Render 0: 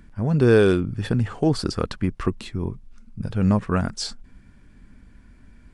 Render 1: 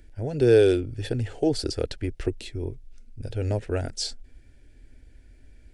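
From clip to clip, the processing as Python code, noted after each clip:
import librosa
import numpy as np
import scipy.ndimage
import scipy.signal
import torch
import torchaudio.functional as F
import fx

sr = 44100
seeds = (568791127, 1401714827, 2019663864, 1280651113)

y = fx.fixed_phaser(x, sr, hz=460.0, stages=4)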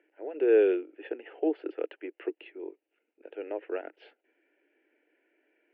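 y = scipy.signal.sosfilt(scipy.signal.cheby1(5, 1.0, [310.0, 2900.0], 'bandpass', fs=sr, output='sos'), x)
y = y * 10.0 ** (-4.0 / 20.0)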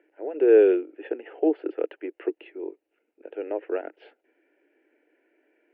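y = fx.high_shelf(x, sr, hz=2400.0, db=-10.0)
y = y * 10.0 ** (6.0 / 20.0)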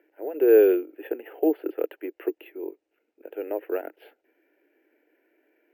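y = np.repeat(x[::3], 3)[:len(x)]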